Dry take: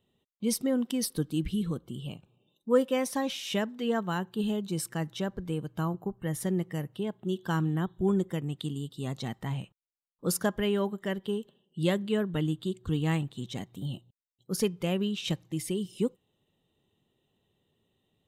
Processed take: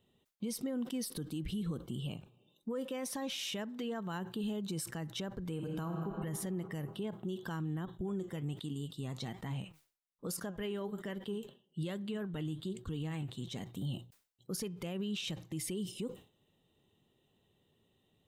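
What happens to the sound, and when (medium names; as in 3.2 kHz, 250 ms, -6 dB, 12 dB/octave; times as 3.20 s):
1.43–2.69 s: compression 2:1, threshold -36 dBFS
5.50–6.17 s: reverb throw, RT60 2.3 s, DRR 4.5 dB
7.85–13.64 s: flange 1.2 Hz, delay 3.3 ms, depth 5.3 ms, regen +74%
whole clip: compression 3:1, threshold -31 dBFS; peak limiter -31 dBFS; decay stretcher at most 150 dB/s; trim +1 dB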